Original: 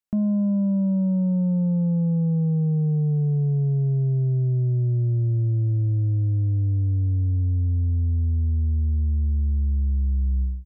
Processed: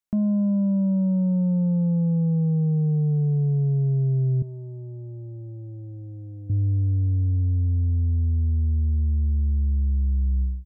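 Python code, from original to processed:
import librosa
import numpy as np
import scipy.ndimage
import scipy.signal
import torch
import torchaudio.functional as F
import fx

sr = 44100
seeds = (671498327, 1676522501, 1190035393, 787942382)

y = fx.highpass(x, sr, hz=660.0, slope=6, at=(4.42, 6.5))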